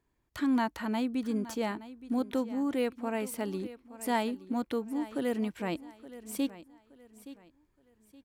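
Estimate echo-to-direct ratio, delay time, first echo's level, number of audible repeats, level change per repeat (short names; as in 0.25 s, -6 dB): -15.5 dB, 0.871 s, -16.0 dB, 2, -10.0 dB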